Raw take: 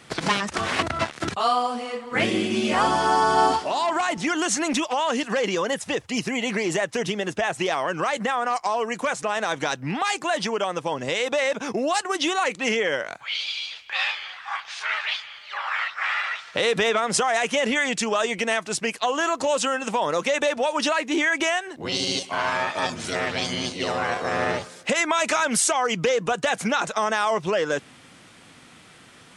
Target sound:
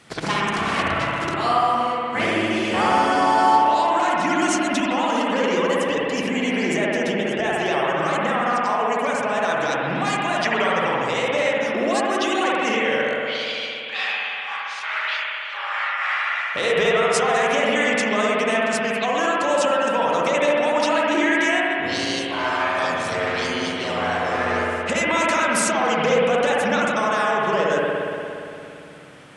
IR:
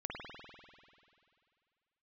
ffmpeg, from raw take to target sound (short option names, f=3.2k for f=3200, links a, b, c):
-filter_complex "[0:a]asettb=1/sr,asplit=3[a][b][c];[a]atrim=end=10.434[d];[b]atrim=start=10.43:end=10.89,asetpts=PTS-STARTPTS,afade=t=in:d=0.004:c=qsin,afade=t=out:st=0.456:d=0.004:c=qsin,equalizer=f=1.9k:t=o:w=0.87:g=13[e];[c]atrim=start=10.886[f];[d][e]acrossfade=d=0.004:c1=hsin:c2=qsin[g];[g][f]acrossfade=d=0.004:c1=qsin:c2=hsin[h];[1:a]atrim=start_sample=2205,asetrate=37485,aresample=44100[i];[h][i]afir=irnorm=-1:irlink=0,volume=1dB"